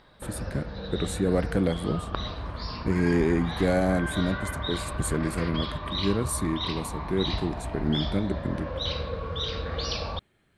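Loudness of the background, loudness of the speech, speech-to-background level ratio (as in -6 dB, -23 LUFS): -33.0 LUFS, -29.0 LUFS, 4.0 dB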